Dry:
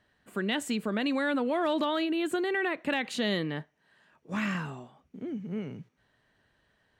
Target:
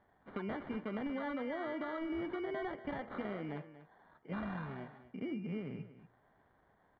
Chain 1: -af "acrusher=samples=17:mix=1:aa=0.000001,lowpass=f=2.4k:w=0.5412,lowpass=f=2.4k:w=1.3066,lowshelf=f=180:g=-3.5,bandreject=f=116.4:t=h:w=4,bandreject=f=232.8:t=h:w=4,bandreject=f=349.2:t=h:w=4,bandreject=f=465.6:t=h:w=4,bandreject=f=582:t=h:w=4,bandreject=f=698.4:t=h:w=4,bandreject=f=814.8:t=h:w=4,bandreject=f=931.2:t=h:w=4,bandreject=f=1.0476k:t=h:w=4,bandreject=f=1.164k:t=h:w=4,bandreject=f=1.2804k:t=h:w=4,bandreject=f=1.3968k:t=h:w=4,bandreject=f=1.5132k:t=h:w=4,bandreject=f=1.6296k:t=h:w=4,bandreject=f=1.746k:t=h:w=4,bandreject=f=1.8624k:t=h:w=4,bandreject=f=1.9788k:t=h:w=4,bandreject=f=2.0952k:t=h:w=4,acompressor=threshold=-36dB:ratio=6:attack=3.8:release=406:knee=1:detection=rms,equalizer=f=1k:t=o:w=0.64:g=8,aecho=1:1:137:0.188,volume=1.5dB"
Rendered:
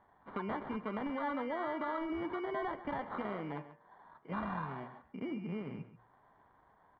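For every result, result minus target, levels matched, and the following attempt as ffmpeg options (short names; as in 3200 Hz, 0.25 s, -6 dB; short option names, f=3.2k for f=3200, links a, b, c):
echo 0.101 s early; 1000 Hz band +5.0 dB
-af "acrusher=samples=17:mix=1:aa=0.000001,lowpass=f=2.4k:w=0.5412,lowpass=f=2.4k:w=1.3066,lowshelf=f=180:g=-3.5,bandreject=f=116.4:t=h:w=4,bandreject=f=232.8:t=h:w=4,bandreject=f=349.2:t=h:w=4,bandreject=f=465.6:t=h:w=4,bandreject=f=582:t=h:w=4,bandreject=f=698.4:t=h:w=4,bandreject=f=814.8:t=h:w=4,bandreject=f=931.2:t=h:w=4,bandreject=f=1.0476k:t=h:w=4,bandreject=f=1.164k:t=h:w=4,bandreject=f=1.2804k:t=h:w=4,bandreject=f=1.3968k:t=h:w=4,bandreject=f=1.5132k:t=h:w=4,bandreject=f=1.6296k:t=h:w=4,bandreject=f=1.746k:t=h:w=4,bandreject=f=1.8624k:t=h:w=4,bandreject=f=1.9788k:t=h:w=4,bandreject=f=2.0952k:t=h:w=4,acompressor=threshold=-36dB:ratio=6:attack=3.8:release=406:knee=1:detection=rms,equalizer=f=1k:t=o:w=0.64:g=8,aecho=1:1:238:0.188,volume=1.5dB"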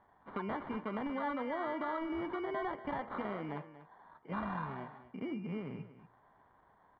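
1000 Hz band +5.0 dB
-af "acrusher=samples=17:mix=1:aa=0.000001,lowpass=f=2.4k:w=0.5412,lowpass=f=2.4k:w=1.3066,lowshelf=f=180:g=-3.5,bandreject=f=116.4:t=h:w=4,bandreject=f=232.8:t=h:w=4,bandreject=f=349.2:t=h:w=4,bandreject=f=465.6:t=h:w=4,bandreject=f=582:t=h:w=4,bandreject=f=698.4:t=h:w=4,bandreject=f=814.8:t=h:w=4,bandreject=f=931.2:t=h:w=4,bandreject=f=1.0476k:t=h:w=4,bandreject=f=1.164k:t=h:w=4,bandreject=f=1.2804k:t=h:w=4,bandreject=f=1.3968k:t=h:w=4,bandreject=f=1.5132k:t=h:w=4,bandreject=f=1.6296k:t=h:w=4,bandreject=f=1.746k:t=h:w=4,bandreject=f=1.8624k:t=h:w=4,bandreject=f=1.9788k:t=h:w=4,bandreject=f=2.0952k:t=h:w=4,acompressor=threshold=-36dB:ratio=6:attack=3.8:release=406:knee=1:detection=rms,equalizer=f=1k:t=o:w=0.64:g=-2,aecho=1:1:238:0.188,volume=1.5dB"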